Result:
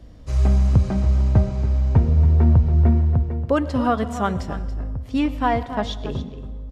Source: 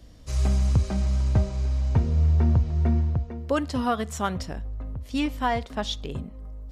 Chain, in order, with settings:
high-shelf EQ 2,800 Hz −12 dB
single-tap delay 281 ms −12.5 dB
on a send at −16 dB: convolution reverb RT60 1.3 s, pre-delay 88 ms
on the sum: level +5.5 dB

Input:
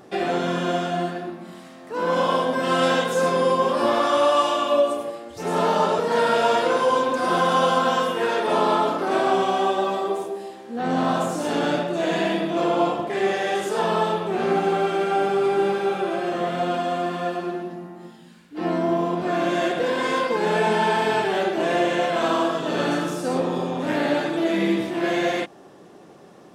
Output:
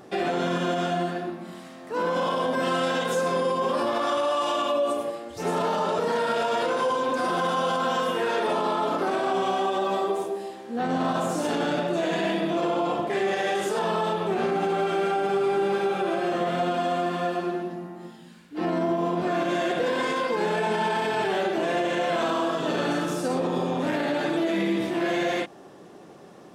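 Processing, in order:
brickwall limiter −17 dBFS, peak gain reduction 9 dB

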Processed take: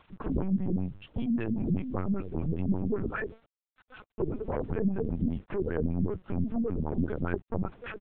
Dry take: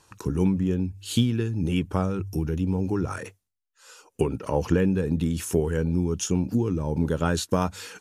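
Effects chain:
low-shelf EQ 230 Hz +3.5 dB
comb filter 4.6 ms, depth 61%
0:01.26–0:04.66: hum removal 53.56 Hz, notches 19
dynamic equaliser 760 Hz, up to −6 dB, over −50 dBFS, Q 7.2
downward compressor 6 to 1, threshold −26 dBFS, peak gain reduction 12 dB
soft clipping −25.5 dBFS, distortion −14 dB
auto-filter low-pass sine 5.1 Hz 210–2,400 Hz
centre clipping without the shift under −53.5 dBFS
linear-prediction vocoder at 8 kHz pitch kept

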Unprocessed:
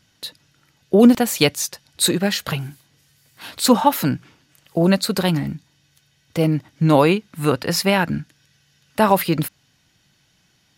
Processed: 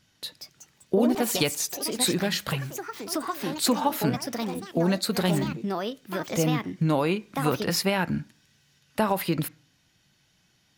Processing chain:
downward compressor, threshold −15 dBFS, peak gain reduction 8.5 dB
on a send at −16 dB: convolution reverb RT60 0.55 s, pre-delay 3 ms
on the sum: delay with pitch and tempo change per echo 230 ms, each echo +4 semitones, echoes 3, each echo −6 dB
level −4.5 dB

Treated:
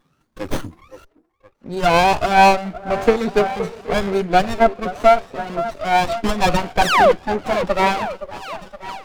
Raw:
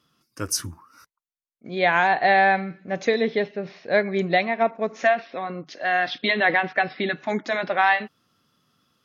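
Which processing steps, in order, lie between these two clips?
rippled gain that drifts along the octave scale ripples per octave 1.8, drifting +2.5 Hz, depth 24 dB
sound drawn into the spectrogram fall, 0:06.81–0:07.12, 450–2,500 Hz −9 dBFS
on a send: echo through a band-pass that steps 518 ms, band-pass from 510 Hz, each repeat 0.7 octaves, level −10 dB
on the sum: windowed peak hold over 17 samples

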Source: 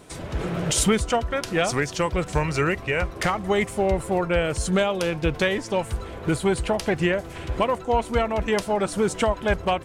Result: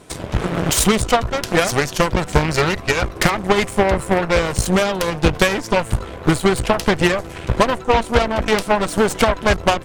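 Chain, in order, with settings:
harmonic generator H 8 −14 dB, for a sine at −8.5 dBFS
transient designer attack +6 dB, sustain +2 dB
level +2.5 dB

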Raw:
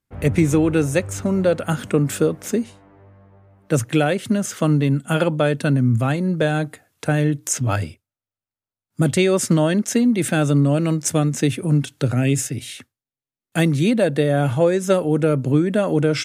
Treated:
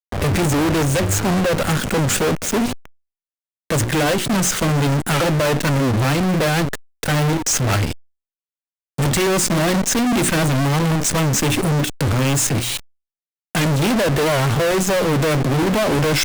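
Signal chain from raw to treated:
0:10.49–0:11.03: lower of the sound and its delayed copy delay 0.97 ms
low-pass filter 9,600 Hz 24 dB per octave
mains-hum notches 60/120/180/240/300/360 Hz
output level in coarse steps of 10 dB
fuzz pedal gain 38 dB, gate −40 dBFS
power curve on the samples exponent 0.35
wow of a warped record 78 rpm, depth 160 cents
level −5 dB

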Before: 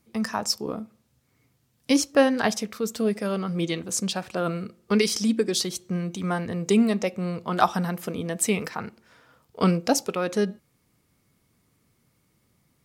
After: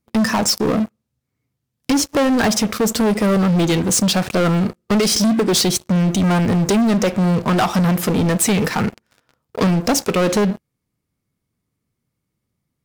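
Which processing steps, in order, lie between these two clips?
low-shelf EQ 320 Hz +5.5 dB
downward compressor 5 to 1, threshold −21 dBFS, peak gain reduction 9.5 dB
leveller curve on the samples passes 5
level −2.5 dB

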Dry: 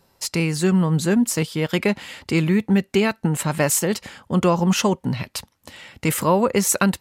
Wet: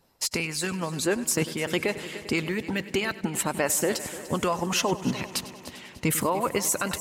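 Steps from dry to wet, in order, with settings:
harmonic and percussive parts rebalanced harmonic −15 dB
echo machine with several playback heads 99 ms, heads first and third, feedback 64%, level −18 dB
brickwall limiter −14.5 dBFS, peak gain reduction 9 dB

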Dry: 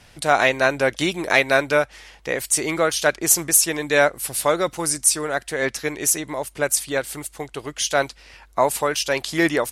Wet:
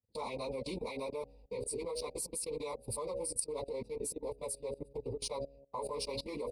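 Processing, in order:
adaptive Wiener filter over 41 samples
EQ curve with evenly spaced ripples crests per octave 0.93, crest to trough 17 dB
time stretch by phase vocoder 0.67×
noise gate −43 dBFS, range −27 dB
hum removal 69.4 Hz, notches 11
downward compressor 3 to 1, threshold −24 dBFS, peak gain reduction 11 dB
high-pass filter 40 Hz 12 dB per octave
output level in coarse steps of 20 dB
Chebyshev band-stop filter 1,000–2,800 Hz, order 2
level +3 dB

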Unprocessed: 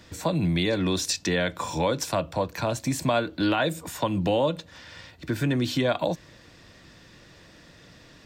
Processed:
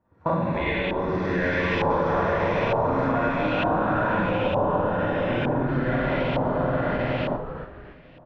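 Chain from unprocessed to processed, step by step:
feedback delay that plays each chunk backwards 372 ms, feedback 73%, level −9 dB
high-frequency loss of the air 110 metres
four-comb reverb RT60 3.8 s, combs from 33 ms, DRR −10 dB
downward compressor 10 to 1, threshold −22 dBFS, peak gain reduction 14 dB
noise gate with hold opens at −17 dBFS
0:00.53–0:01.10: low-shelf EQ 160 Hz −12 dB
0:04.91–0:05.56: notch filter 4,400 Hz, Q 9.1
echo with shifted repeats 282 ms, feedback 34%, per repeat −100 Hz, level −8 dB
auto-filter low-pass saw up 1.1 Hz 910–2,700 Hz
0:01.90–0:03.12: multiband upward and downward compressor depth 70%

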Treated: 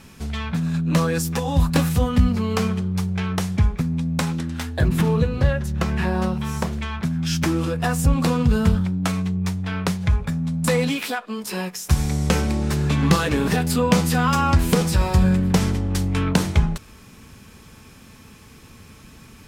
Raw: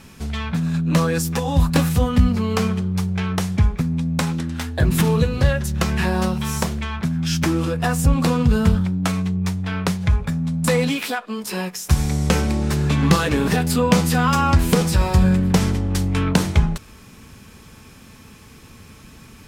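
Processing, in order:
0:04.88–0:06.73: high-shelf EQ 3,300 Hz −9 dB
level −1.5 dB

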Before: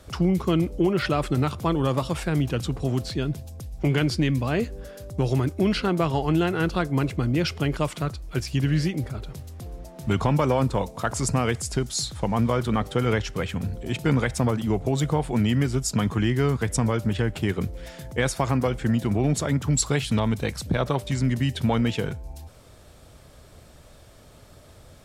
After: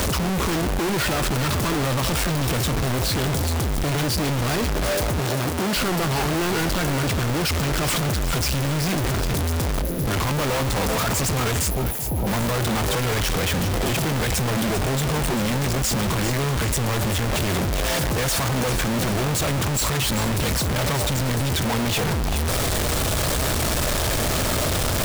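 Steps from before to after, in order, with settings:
sign of each sample alone
0:05.20–0:05.76: high-pass filter 110 Hz
0:09.82–0:10.06: gain on a spectral selection 640–10,000 Hz −18 dB
0:11.70–0:12.27: linear-phase brick-wall band-stop 980–10,000 Hz
feedback echo with a high-pass in the loop 395 ms, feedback 43%, level −9.5 dB
level +2.5 dB

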